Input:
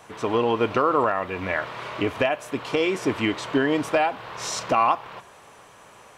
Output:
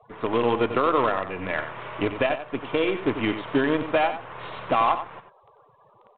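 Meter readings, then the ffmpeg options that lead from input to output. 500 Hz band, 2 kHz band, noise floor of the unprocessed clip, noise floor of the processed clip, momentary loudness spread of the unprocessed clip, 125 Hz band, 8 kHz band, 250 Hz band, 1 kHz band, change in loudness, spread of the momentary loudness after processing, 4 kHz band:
−0.5 dB, −1.5 dB, −50 dBFS, −58 dBFS, 9 LU, −1.0 dB, below −40 dB, −0.5 dB, −1.0 dB, −1.0 dB, 8 LU, −2.5 dB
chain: -filter_complex "[0:a]afftfilt=real='re*gte(hypot(re,im),0.01)':imag='im*gte(hypot(re,im),0.01)':win_size=1024:overlap=0.75,aemphasis=mode=reproduction:type=50fm,acrossover=split=300[link_01][link_02];[link_01]acompressor=mode=upward:threshold=-52dB:ratio=2.5[link_03];[link_03][link_02]amix=inputs=2:normalize=0,asoftclip=type=tanh:threshold=-9dB,asplit=2[link_04][link_05];[link_05]acrusher=bits=4:dc=4:mix=0:aa=0.000001,volume=-3dB[link_06];[link_04][link_06]amix=inputs=2:normalize=0,aecho=1:1:92:0.299,volume=-5dB" -ar 8000 -c:a pcm_mulaw

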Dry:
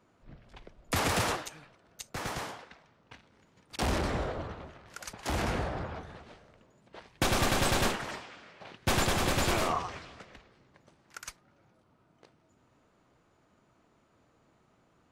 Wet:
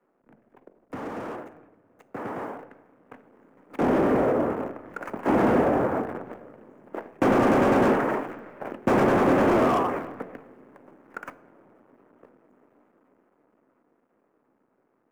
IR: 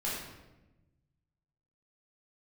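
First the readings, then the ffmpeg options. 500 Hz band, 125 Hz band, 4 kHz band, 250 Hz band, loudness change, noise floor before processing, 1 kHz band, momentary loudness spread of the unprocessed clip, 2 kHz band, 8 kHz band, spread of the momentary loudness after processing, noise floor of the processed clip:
+12.0 dB, +1.5 dB, −10.0 dB, +12.5 dB, +8.0 dB, −68 dBFS, +7.5 dB, 20 LU, +2.5 dB, below −10 dB, 20 LU, −70 dBFS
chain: -filter_complex "[0:a]acrossover=split=3700[link_01][link_02];[link_02]acompressor=threshold=-43dB:ratio=4:attack=1:release=60[link_03];[link_01][link_03]amix=inputs=2:normalize=0,acrusher=bits=8:dc=4:mix=0:aa=0.000001,acrossover=split=250 2100:gain=0.112 1 0.0794[link_04][link_05][link_06];[link_04][link_05][link_06]amix=inputs=3:normalize=0,bandreject=frequency=45.16:width_type=h:width=4,bandreject=frequency=90.32:width_type=h:width=4,bandreject=frequency=135.48:width_type=h:width=4,bandreject=frequency=180.64:width_type=h:width=4,bandreject=frequency=225.8:width_type=h:width=4,bandreject=frequency=270.96:width_type=h:width=4,bandreject=frequency=316.12:width_type=h:width=4,bandreject=frequency=361.28:width_type=h:width=4,bandreject=frequency=406.44:width_type=h:width=4,bandreject=frequency=451.6:width_type=h:width=4,bandreject=frequency=496.76:width_type=h:width=4,bandreject=frequency=541.92:width_type=h:width=4,bandreject=frequency=587.08:width_type=h:width=4,bandreject=frequency=632.24:width_type=h:width=4,bandreject=frequency=677.4:width_type=h:width=4,bandreject=frequency=722.56:width_type=h:width=4,bandreject=frequency=767.72:width_type=h:width=4,bandreject=frequency=812.88:width_type=h:width=4,bandreject=frequency=858.04:width_type=h:width=4,asplit=2[link_07][link_08];[1:a]atrim=start_sample=2205[link_09];[link_08][link_09]afir=irnorm=-1:irlink=0,volume=-21dB[link_10];[link_07][link_10]amix=inputs=2:normalize=0,asoftclip=type=hard:threshold=-35dB,equalizer=frequency=125:width_type=o:width=1:gain=7,equalizer=frequency=250:width_type=o:width=1:gain=11,equalizer=frequency=500:width_type=o:width=1:gain=4,equalizer=frequency=4000:width_type=o:width=1:gain=-12,dynaudnorm=framelen=390:gausssize=17:maxgain=15dB,volume=-2.5dB"

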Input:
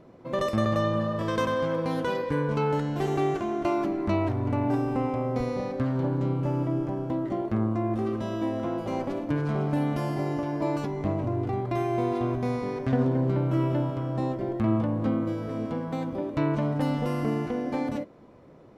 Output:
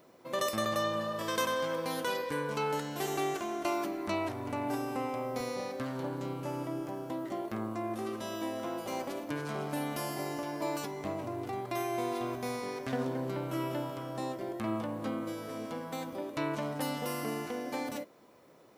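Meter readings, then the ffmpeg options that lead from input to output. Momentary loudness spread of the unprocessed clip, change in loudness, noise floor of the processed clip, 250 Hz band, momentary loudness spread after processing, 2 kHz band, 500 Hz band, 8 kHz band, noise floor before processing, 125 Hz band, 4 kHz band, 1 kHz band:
5 LU, −7.5 dB, −57 dBFS, −9.5 dB, 5 LU, −1.5 dB, −6.5 dB, can't be measured, −49 dBFS, −14.5 dB, +2.5 dB, −4.0 dB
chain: -af "aemphasis=mode=production:type=riaa,volume=-3.5dB"

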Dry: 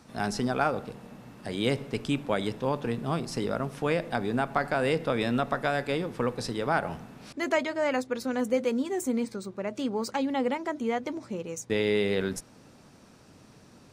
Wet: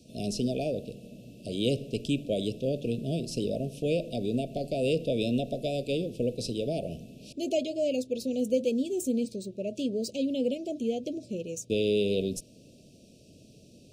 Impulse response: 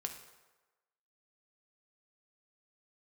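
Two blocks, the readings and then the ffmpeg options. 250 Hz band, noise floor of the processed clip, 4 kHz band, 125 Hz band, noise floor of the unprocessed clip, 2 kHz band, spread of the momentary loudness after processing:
0.0 dB, −55 dBFS, 0.0 dB, 0.0 dB, −55 dBFS, −12.5 dB, 9 LU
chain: -af "asuperstop=centerf=1300:order=20:qfactor=0.71"

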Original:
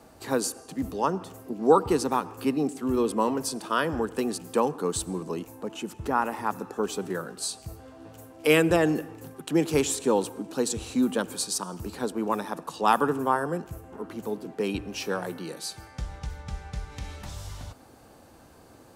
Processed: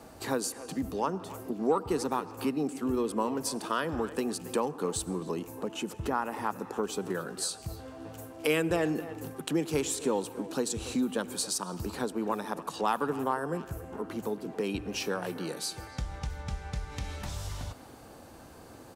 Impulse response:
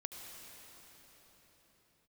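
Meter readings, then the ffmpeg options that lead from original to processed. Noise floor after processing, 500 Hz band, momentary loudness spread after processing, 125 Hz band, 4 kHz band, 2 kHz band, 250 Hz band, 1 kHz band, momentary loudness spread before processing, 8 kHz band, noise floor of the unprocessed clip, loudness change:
−50 dBFS, −5.0 dB, 10 LU, −3.0 dB, −2.5 dB, −5.0 dB, −4.5 dB, −5.5 dB, 17 LU, −2.5 dB, −53 dBFS, −5.0 dB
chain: -filter_complex "[0:a]acompressor=threshold=-36dB:ratio=2,aeval=exprs='0.133*(cos(1*acos(clip(val(0)/0.133,-1,1)))-cos(1*PI/2))+0.00188*(cos(7*acos(clip(val(0)/0.133,-1,1)))-cos(7*PI/2))':channel_layout=same,asplit=2[link_01][link_02];[link_02]adelay=280,highpass=300,lowpass=3400,asoftclip=type=hard:threshold=-27.5dB,volume=-14dB[link_03];[link_01][link_03]amix=inputs=2:normalize=0,volume=3.5dB"

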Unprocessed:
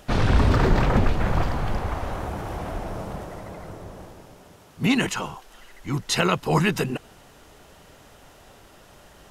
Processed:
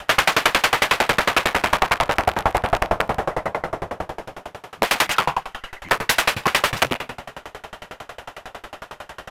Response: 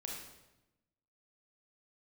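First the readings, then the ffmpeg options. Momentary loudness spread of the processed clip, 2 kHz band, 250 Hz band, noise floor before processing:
20 LU, +10.5 dB, −6.5 dB, −51 dBFS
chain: -filter_complex "[0:a]adynamicequalizer=threshold=0.0126:dfrequency=340:dqfactor=2.1:tfrequency=340:tqfactor=2.1:attack=5:release=100:ratio=0.375:range=3:mode=cutabove:tftype=bell,aeval=exprs='(mod(13.3*val(0)+1,2)-1)/13.3':channel_layout=same,acrossover=split=520 3300:gain=0.251 1 0.251[link_01][link_02][link_03];[link_01][link_02][link_03]amix=inputs=3:normalize=0,asplit=2[link_04][link_05];[1:a]atrim=start_sample=2205[link_06];[link_05][link_06]afir=irnorm=-1:irlink=0,volume=-6.5dB[link_07];[link_04][link_07]amix=inputs=2:normalize=0,aresample=32000,aresample=44100,alimiter=level_in=22.5dB:limit=-1dB:release=50:level=0:latency=1,aeval=exprs='val(0)*pow(10,-31*if(lt(mod(11*n/s,1),2*abs(11)/1000),1-mod(11*n/s,1)/(2*abs(11)/1000),(mod(11*n/s,1)-2*abs(11)/1000)/(1-2*abs(11)/1000))/20)':channel_layout=same"

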